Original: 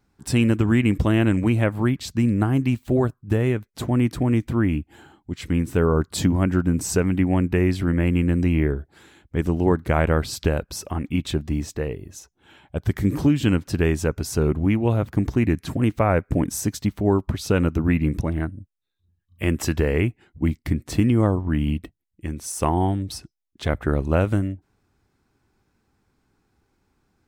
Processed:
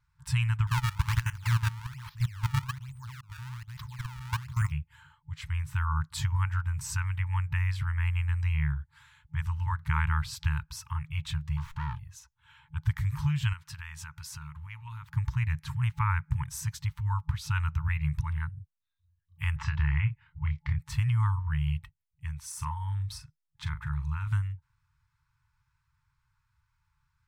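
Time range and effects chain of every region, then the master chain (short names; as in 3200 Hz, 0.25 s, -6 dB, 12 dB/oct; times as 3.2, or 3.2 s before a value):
0.67–4.72 reverse delay 0.141 s, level -3.5 dB + level quantiser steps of 17 dB + decimation with a swept rate 24×, swing 160% 1.2 Hz
11.57–11.99 band shelf 1700 Hz -15.5 dB 1.3 oct + overdrive pedal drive 25 dB, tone 1300 Hz, clips at -13.5 dBFS + running maximum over 9 samples
13.53–15.14 low shelf 440 Hz -11 dB + compressor 4:1, threshold -29 dBFS
19.56–20.79 air absorption 190 m + doubler 28 ms -6 dB + three-band squash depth 40%
22.47–24.27 notch 2900 Hz, Q 15 + compressor 3:1, threshold -22 dBFS + doubler 40 ms -10 dB
whole clip: FFT band-reject 160–860 Hz; high shelf 3400 Hz -7.5 dB; gain -3.5 dB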